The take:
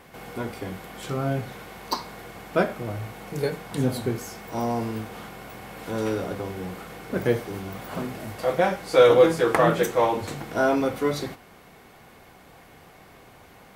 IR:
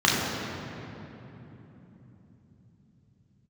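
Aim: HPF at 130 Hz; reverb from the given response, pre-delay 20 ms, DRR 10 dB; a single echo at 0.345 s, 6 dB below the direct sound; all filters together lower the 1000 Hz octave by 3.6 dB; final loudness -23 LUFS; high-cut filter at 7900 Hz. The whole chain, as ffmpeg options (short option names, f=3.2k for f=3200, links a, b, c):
-filter_complex "[0:a]highpass=130,lowpass=7.9k,equalizer=f=1k:t=o:g=-5,aecho=1:1:345:0.501,asplit=2[a][b];[1:a]atrim=start_sample=2205,adelay=20[c];[b][c]afir=irnorm=-1:irlink=0,volume=-29dB[d];[a][d]amix=inputs=2:normalize=0,volume=2.5dB"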